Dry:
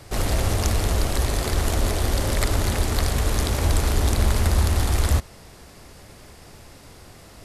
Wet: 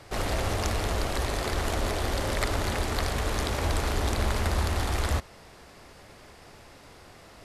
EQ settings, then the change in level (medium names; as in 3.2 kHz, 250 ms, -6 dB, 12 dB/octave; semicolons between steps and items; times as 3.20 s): bass shelf 320 Hz -8.5 dB; treble shelf 5.4 kHz -11 dB; 0.0 dB